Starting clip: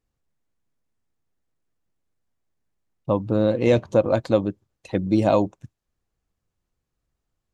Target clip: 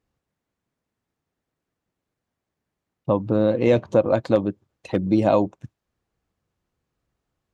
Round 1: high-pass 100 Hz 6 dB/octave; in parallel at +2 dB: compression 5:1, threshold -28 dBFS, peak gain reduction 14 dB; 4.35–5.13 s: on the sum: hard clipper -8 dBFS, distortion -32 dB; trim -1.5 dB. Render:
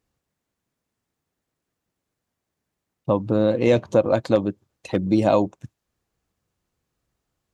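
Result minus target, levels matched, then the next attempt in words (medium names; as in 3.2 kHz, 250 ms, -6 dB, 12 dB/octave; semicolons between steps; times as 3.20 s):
8 kHz band +6.0 dB
high-pass 100 Hz 6 dB/octave; treble shelf 5.1 kHz -9.5 dB; in parallel at +2 dB: compression 5:1, threshold -28 dBFS, peak gain reduction 14 dB; 4.35–5.13 s: on the sum: hard clipper -8 dBFS, distortion -33 dB; trim -1.5 dB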